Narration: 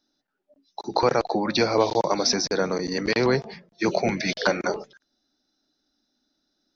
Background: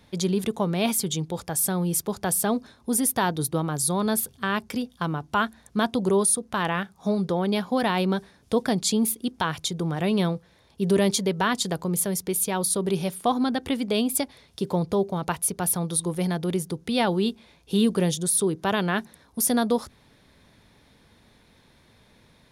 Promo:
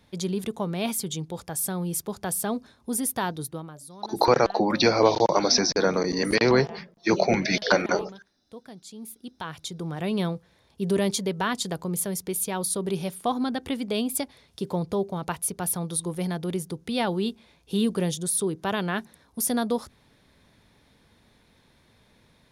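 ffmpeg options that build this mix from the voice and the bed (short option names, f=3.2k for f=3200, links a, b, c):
-filter_complex "[0:a]adelay=3250,volume=1.5dB[a];[1:a]volume=13.5dB,afade=t=out:st=3.24:d=0.57:silence=0.149624,afade=t=in:st=8.94:d=1.29:silence=0.133352[b];[a][b]amix=inputs=2:normalize=0"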